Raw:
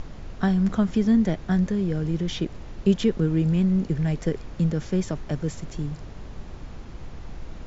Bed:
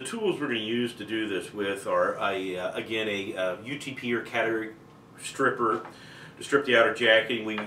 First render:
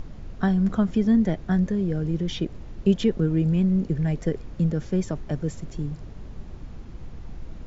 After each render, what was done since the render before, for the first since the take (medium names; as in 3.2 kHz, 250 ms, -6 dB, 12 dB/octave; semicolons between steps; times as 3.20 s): noise reduction 6 dB, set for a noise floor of -40 dBFS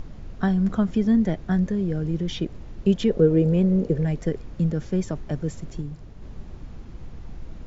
3.10–4.05 s: peaking EQ 490 Hz +14 dB 0.75 oct; 5.81–6.22 s: gain -3.5 dB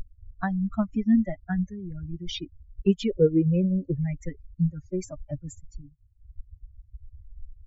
expander on every frequency bin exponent 3; in parallel at -2 dB: compression, threshold -33 dBFS, peak gain reduction 16.5 dB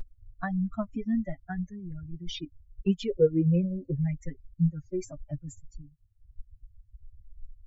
flange 1.7 Hz, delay 5.7 ms, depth 2.7 ms, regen +27%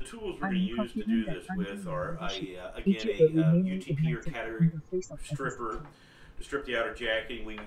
add bed -10 dB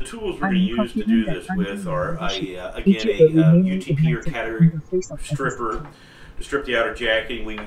trim +10 dB; peak limiter -3 dBFS, peak gain reduction 2 dB